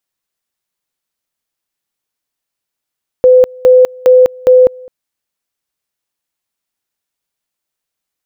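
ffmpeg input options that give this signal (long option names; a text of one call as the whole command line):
ffmpeg -f lavfi -i "aevalsrc='pow(10,(-2-26.5*gte(mod(t,0.41),0.2))/20)*sin(2*PI*507*t)':duration=1.64:sample_rate=44100" out.wav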